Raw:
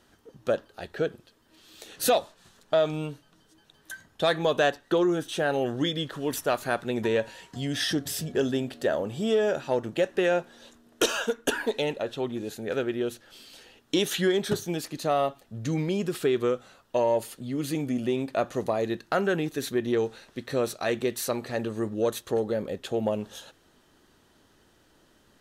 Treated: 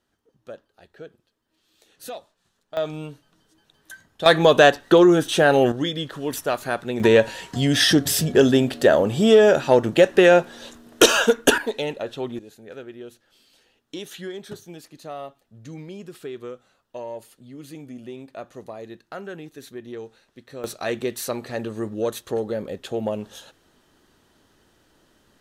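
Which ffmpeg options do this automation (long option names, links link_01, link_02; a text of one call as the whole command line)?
ffmpeg -i in.wav -af "asetnsamples=nb_out_samples=441:pad=0,asendcmd='2.77 volume volume -1.5dB;4.26 volume volume 10dB;5.72 volume volume 2dB;7 volume volume 10.5dB;11.58 volume volume 1dB;12.39 volume volume -10dB;20.64 volume volume 1dB',volume=-13dB" out.wav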